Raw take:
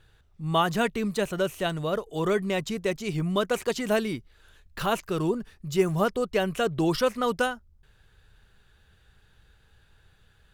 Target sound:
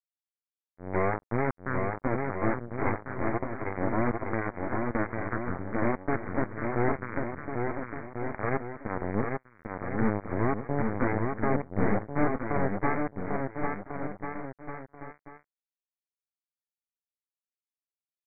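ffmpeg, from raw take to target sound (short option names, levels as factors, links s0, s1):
-af "aeval=exprs='(tanh(11.2*val(0)+0.75)-tanh(0.75))/11.2':c=same,aresample=8000,acrusher=bits=3:mix=0:aa=0.5,aresample=44100,aecho=1:1:460|805|1064|1258|1403:0.631|0.398|0.251|0.158|0.1,asetrate=25442,aresample=44100"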